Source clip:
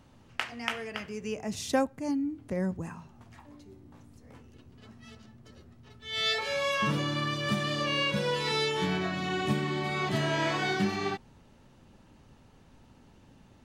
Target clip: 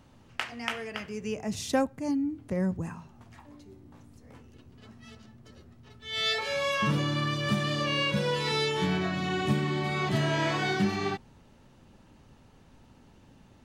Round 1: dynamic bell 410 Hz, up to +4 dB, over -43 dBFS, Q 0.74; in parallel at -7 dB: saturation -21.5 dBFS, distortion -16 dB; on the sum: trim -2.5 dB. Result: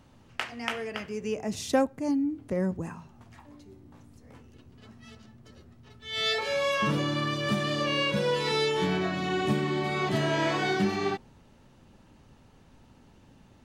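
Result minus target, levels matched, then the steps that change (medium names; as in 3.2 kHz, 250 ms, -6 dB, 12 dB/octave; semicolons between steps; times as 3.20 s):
125 Hz band -3.0 dB
change: dynamic bell 110 Hz, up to +4 dB, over -43 dBFS, Q 0.74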